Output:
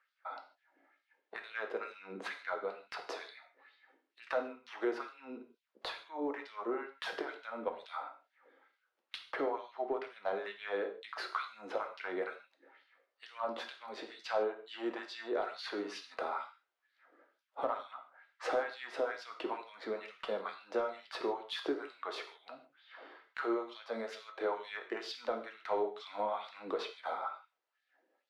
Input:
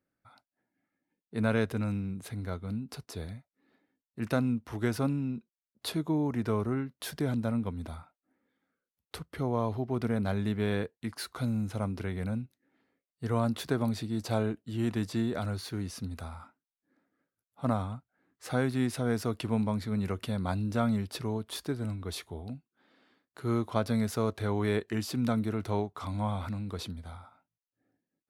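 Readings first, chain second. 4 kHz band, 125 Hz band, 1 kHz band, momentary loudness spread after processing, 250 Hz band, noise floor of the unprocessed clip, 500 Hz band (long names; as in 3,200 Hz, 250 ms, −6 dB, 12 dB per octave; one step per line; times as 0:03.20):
−3.0 dB, below −35 dB, −0.5 dB, 13 LU, −14.5 dB, below −85 dBFS, −2.5 dB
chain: three-way crossover with the lows and the highs turned down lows −14 dB, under 250 Hz, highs −17 dB, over 6,000 Hz
downward compressor 4 to 1, threshold −49 dBFS, peak gain reduction 20 dB
auto-filter high-pass sine 2.2 Hz 350–3,900 Hz
mid-hump overdrive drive 13 dB, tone 1,100 Hz, clips at −25 dBFS
reverb whose tail is shaped and stops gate 180 ms falling, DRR 4.5 dB
level +8 dB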